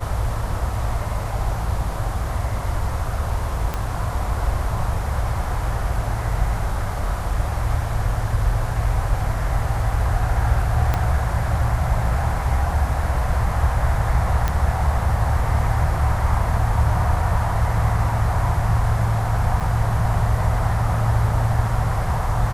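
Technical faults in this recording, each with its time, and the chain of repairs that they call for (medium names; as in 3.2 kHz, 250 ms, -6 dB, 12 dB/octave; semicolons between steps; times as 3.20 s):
3.74 s: pop -11 dBFS
10.94 s: pop -8 dBFS
14.48 s: pop -8 dBFS
19.60–19.61 s: dropout 6.2 ms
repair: de-click; interpolate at 19.60 s, 6.2 ms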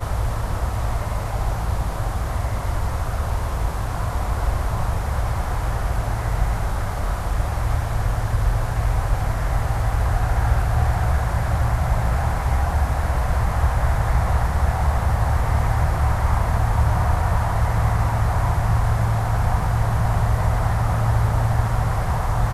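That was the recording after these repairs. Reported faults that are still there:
3.74 s: pop
10.94 s: pop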